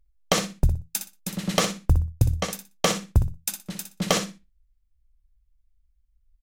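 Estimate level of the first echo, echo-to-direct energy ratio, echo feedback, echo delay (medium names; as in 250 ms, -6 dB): -9.0 dB, -9.0 dB, 20%, 61 ms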